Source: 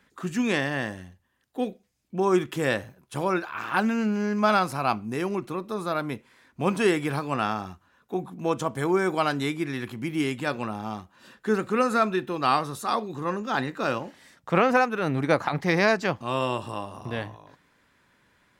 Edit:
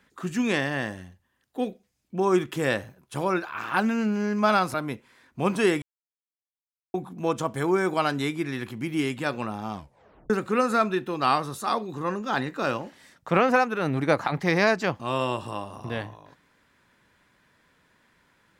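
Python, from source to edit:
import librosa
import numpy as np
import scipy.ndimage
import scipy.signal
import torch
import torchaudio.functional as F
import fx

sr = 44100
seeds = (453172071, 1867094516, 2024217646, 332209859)

y = fx.edit(x, sr, fx.cut(start_s=4.74, length_s=1.21),
    fx.silence(start_s=7.03, length_s=1.12),
    fx.tape_stop(start_s=10.94, length_s=0.57), tone=tone)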